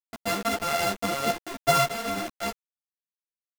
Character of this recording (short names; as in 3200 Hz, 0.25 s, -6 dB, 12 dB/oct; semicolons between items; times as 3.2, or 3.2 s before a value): a buzz of ramps at a fixed pitch in blocks of 64 samples; chopped level 0.65 Hz, depth 65%, duty 85%; a quantiser's noise floor 6-bit, dither none; a shimmering, thickened sound